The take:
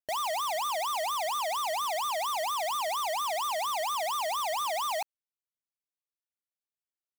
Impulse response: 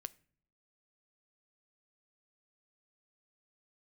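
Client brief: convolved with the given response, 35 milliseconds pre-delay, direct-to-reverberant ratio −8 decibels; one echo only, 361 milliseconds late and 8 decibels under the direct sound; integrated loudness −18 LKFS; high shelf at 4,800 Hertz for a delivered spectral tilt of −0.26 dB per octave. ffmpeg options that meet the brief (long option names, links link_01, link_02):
-filter_complex "[0:a]highshelf=frequency=4800:gain=-4.5,aecho=1:1:361:0.398,asplit=2[link_01][link_02];[1:a]atrim=start_sample=2205,adelay=35[link_03];[link_02][link_03]afir=irnorm=-1:irlink=0,volume=12dB[link_04];[link_01][link_04]amix=inputs=2:normalize=0,volume=3.5dB"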